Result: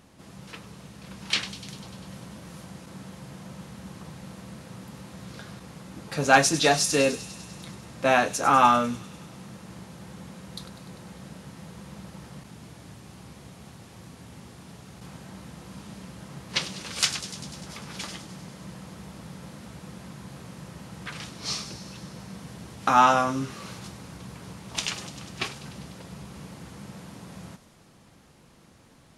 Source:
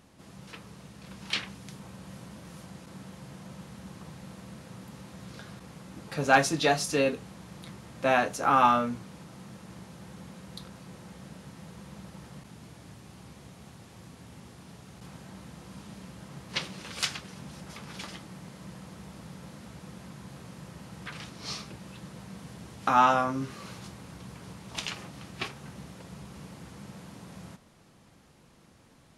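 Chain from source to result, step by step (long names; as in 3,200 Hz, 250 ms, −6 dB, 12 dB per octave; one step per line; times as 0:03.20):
dynamic equaliser 7,200 Hz, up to +6 dB, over −51 dBFS, Q 0.78
delay with a high-pass on its return 99 ms, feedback 73%, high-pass 3,900 Hz, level −11 dB
level +3 dB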